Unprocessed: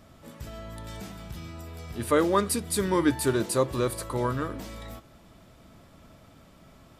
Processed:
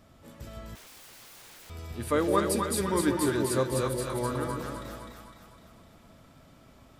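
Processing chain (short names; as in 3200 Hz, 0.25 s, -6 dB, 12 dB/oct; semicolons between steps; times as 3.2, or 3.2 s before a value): split-band echo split 650 Hz, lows 0.159 s, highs 0.254 s, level -3 dB; 0.75–1.7 wrapped overs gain 42 dB; gain -4 dB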